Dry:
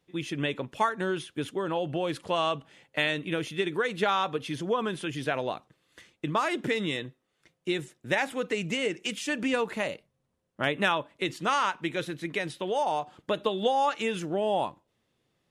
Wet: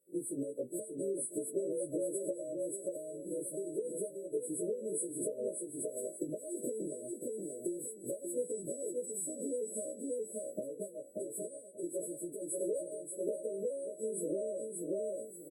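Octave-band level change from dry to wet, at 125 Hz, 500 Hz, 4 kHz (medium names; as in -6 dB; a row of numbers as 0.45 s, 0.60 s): -16.0 dB, -5.5 dB, under -40 dB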